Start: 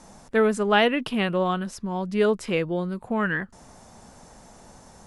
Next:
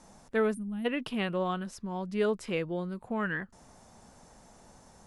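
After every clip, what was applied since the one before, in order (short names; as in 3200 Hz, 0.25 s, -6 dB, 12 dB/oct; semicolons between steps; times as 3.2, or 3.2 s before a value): spectral gain 0.54–0.85, 340–8500 Hz -28 dB; gain -7 dB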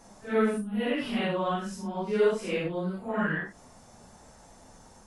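phase scrambler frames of 0.2 s; gain +3 dB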